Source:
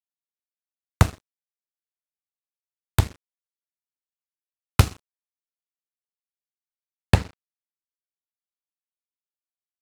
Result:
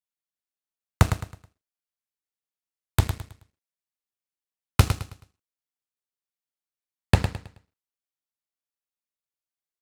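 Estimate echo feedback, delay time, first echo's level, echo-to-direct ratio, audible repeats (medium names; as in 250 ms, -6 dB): 33%, 107 ms, -8.5 dB, -8.0 dB, 3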